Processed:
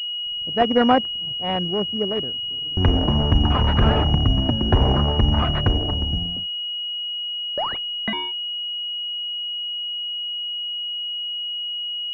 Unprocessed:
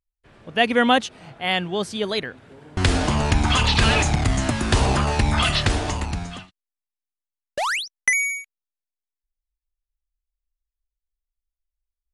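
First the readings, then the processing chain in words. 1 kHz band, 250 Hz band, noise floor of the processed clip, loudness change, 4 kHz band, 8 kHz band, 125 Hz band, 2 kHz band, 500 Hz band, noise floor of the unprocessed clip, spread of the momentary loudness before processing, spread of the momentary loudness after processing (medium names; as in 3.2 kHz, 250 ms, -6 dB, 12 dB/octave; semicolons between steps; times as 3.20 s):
-0.5 dB, +2.0 dB, -28 dBFS, -0.5 dB, +7.5 dB, under -25 dB, +2.5 dB, -10.0 dB, +1.5 dB, under -85 dBFS, 13 LU, 7 LU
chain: local Wiener filter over 41 samples; hysteresis with a dead band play -43 dBFS; class-D stage that switches slowly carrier 2.9 kHz; trim +2.5 dB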